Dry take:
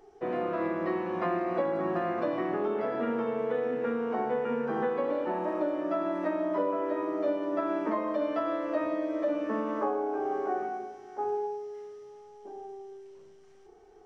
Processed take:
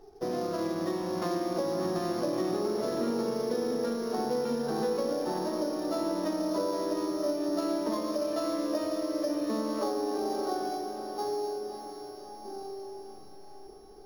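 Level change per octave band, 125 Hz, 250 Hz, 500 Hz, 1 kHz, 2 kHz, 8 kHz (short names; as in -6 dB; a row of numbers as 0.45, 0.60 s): +2.5 dB, +1.0 dB, -1.0 dB, -2.5 dB, -6.0 dB, n/a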